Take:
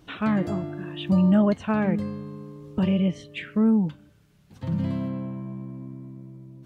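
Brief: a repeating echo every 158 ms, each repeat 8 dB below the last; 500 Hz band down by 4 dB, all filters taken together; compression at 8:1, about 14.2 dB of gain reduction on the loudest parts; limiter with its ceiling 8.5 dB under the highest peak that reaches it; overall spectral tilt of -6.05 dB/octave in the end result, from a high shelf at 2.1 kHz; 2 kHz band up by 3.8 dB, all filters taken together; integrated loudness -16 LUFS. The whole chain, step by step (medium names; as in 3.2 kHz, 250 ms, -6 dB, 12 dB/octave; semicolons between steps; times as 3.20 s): peaking EQ 500 Hz -5.5 dB; peaking EQ 2 kHz +7 dB; treble shelf 2.1 kHz -3 dB; compression 8:1, threshold -32 dBFS; peak limiter -30 dBFS; feedback delay 158 ms, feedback 40%, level -8 dB; trim +21.5 dB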